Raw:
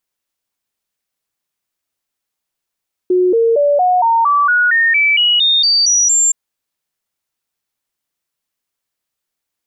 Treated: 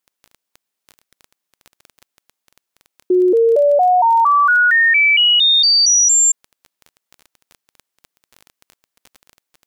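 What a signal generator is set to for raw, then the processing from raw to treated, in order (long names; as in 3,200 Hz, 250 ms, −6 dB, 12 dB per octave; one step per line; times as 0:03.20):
stepped sweep 364 Hz up, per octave 3, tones 14, 0.23 s, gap 0.00 s −9 dBFS
high-pass filter 170 Hz
surface crackle 16 per second −26 dBFS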